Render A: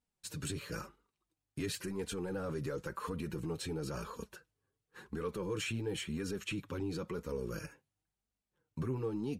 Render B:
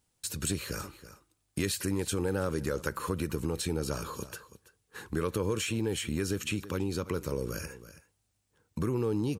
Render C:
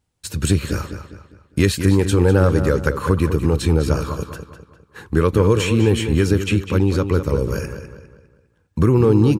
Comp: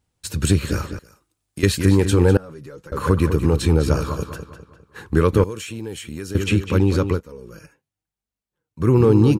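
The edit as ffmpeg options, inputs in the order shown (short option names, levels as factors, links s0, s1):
-filter_complex "[1:a]asplit=2[s0][s1];[0:a]asplit=2[s2][s3];[2:a]asplit=5[s4][s5][s6][s7][s8];[s4]atrim=end=0.992[s9];[s0]atrim=start=0.988:end=1.632[s10];[s5]atrim=start=1.628:end=2.372[s11];[s2]atrim=start=2.368:end=2.922[s12];[s6]atrim=start=2.918:end=5.442[s13];[s1]atrim=start=5.438:end=6.352[s14];[s7]atrim=start=6.348:end=7.21[s15];[s3]atrim=start=7.11:end=8.89[s16];[s8]atrim=start=8.79[s17];[s9][s10]acrossfade=d=0.004:c1=hsin:c2=hsin[s18];[s18][s11]acrossfade=d=0.004:c1=hsin:c2=hsin[s19];[s19][s12]acrossfade=d=0.004:c1=hsin:c2=hsin[s20];[s20][s13]acrossfade=d=0.004:c1=hsin:c2=hsin[s21];[s21][s14]acrossfade=d=0.004:c1=hsin:c2=hsin[s22];[s22][s15]acrossfade=d=0.004:c1=hsin:c2=hsin[s23];[s23][s16]acrossfade=d=0.1:c1=tri:c2=tri[s24];[s24][s17]acrossfade=d=0.1:c1=tri:c2=tri"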